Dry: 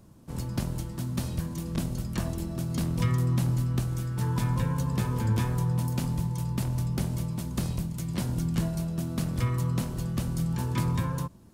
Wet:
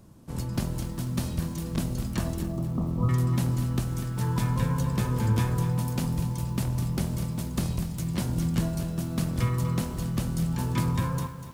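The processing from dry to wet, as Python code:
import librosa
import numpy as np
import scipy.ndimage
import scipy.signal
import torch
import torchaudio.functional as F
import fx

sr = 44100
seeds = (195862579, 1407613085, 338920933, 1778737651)

y = fx.cheby1_lowpass(x, sr, hz=1300.0, order=8, at=(2.42, 3.09))
y = fx.echo_crushed(y, sr, ms=245, feedback_pct=35, bits=8, wet_db=-10.5)
y = F.gain(torch.from_numpy(y), 1.5).numpy()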